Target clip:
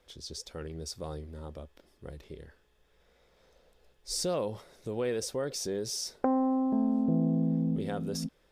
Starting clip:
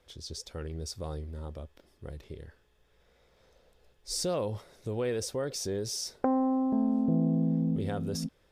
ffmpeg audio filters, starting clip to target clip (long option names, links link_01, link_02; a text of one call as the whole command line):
ffmpeg -i in.wav -af "equalizer=frequency=94:width=3:gain=-11.5" out.wav